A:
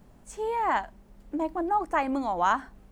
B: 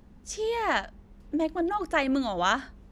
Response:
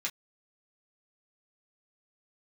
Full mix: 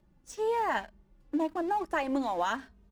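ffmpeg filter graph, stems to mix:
-filter_complex "[0:a]highpass=240,acompressor=threshold=-25dB:ratio=6,aeval=exprs='sgn(val(0))*max(abs(val(0))-0.00355,0)':c=same,volume=-0.5dB[a];[1:a]asplit=2[b][c];[c]adelay=2.9,afreqshift=-1[d];[b][d]amix=inputs=2:normalize=1,volume=-1,adelay=0.8,volume=-8dB[e];[a][e]amix=inputs=2:normalize=0"

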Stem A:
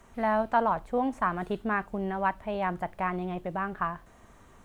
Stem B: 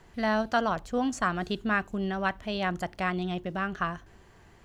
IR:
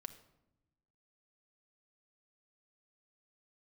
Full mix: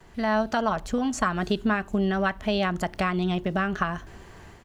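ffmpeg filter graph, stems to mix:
-filter_complex "[0:a]volume=-12dB[a];[1:a]acompressor=threshold=-32dB:ratio=6,adelay=4.5,volume=3dB[b];[a][b]amix=inputs=2:normalize=0,dynaudnorm=f=180:g=3:m=6.5dB"

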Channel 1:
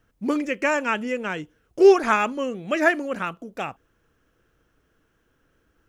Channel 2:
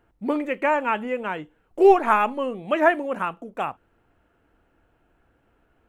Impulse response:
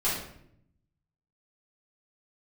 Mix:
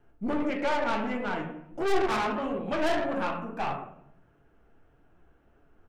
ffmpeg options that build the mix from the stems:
-filter_complex "[0:a]volume=1.5dB[a];[1:a]equalizer=f=3.1k:w=1.5:g=2,adelay=1.3,volume=0.5dB,asplit=3[b][c][d];[c]volume=-7.5dB[e];[d]apad=whole_len=259664[f];[a][f]sidechaincompress=threshold=-20dB:ratio=8:attack=16:release=982[g];[2:a]atrim=start_sample=2205[h];[e][h]afir=irnorm=-1:irlink=0[i];[g][b][i]amix=inputs=3:normalize=0,highshelf=f=2.3k:g=-10.5,aeval=exprs='(tanh(10*val(0)+0.4)-tanh(0.4))/10':c=same,flanger=delay=6.9:depth=6.3:regen=65:speed=1.6:shape=sinusoidal"

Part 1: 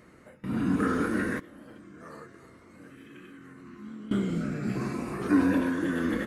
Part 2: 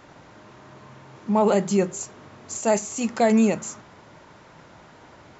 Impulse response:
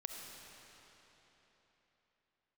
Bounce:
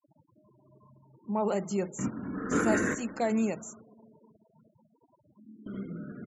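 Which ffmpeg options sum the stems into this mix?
-filter_complex "[0:a]highpass=f=81:p=1,aeval=exprs='clip(val(0),-1,0.0841)':c=same,adelay=1550,volume=1dB,asplit=3[a][b][c];[a]atrim=end=3.5,asetpts=PTS-STARTPTS,afade=t=out:st=3.496:d=0.004:c=hsin[d];[b]atrim=start=3.5:end=5.37,asetpts=PTS-STARTPTS,volume=0[e];[c]atrim=start=5.37,asetpts=PTS-STARTPTS,afade=t=in:d=0.004:c=hsin[f];[d][e][f]concat=n=3:v=0:a=1,asplit=3[g][h][i];[h]volume=-16.5dB[j];[i]volume=-13.5dB[k];[1:a]highpass=f=80:w=0.5412,highpass=f=80:w=1.3066,volume=-10.5dB,asplit=3[l][m][n];[m]volume=-18dB[o];[n]apad=whole_len=344496[p];[g][p]sidechaingate=range=-19dB:threshold=-46dB:ratio=16:detection=peak[q];[2:a]atrim=start_sample=2205[r];[j][o]amix=inputs=2:normalize=0[s];[s][r]afir=irnorm=-1:irlink=0[t];[k]aecho=0:1:77:1[u];[q][l][t][u]amix=inputs=4:normalize=0,afftfilt=real='re*gte(hypot(re,im),0.00562)':imag='im*gte(hypot(re,im),0.00562)':win_size=1024:overlap=0.75"

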